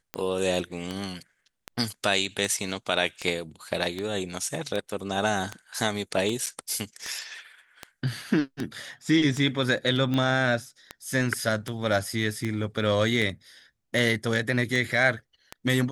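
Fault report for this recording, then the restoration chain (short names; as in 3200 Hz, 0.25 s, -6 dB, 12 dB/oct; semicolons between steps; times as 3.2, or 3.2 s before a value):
tick 78 rpm -16 dBFS
6.46–6.47 gap 7 ms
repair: de-click; interpolate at 6.46, 7 ms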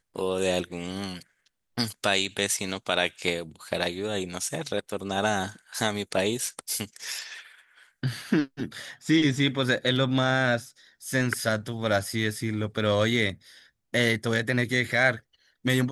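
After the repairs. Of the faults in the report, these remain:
none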